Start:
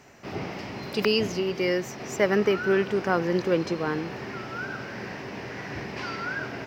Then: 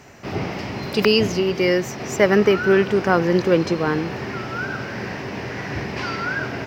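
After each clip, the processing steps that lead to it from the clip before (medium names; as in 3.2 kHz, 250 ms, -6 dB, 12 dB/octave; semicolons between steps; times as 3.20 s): peaking EQ 81 Hz +4.5 dB 1.6 oct; trim +6.5 dB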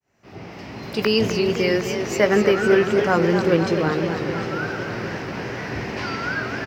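fade-in on the opening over 1.31 s; doubling 18 ms -11 dB; modulated delay 253 ms, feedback 73%, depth 137 cents, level -8 dB; trim -2 dB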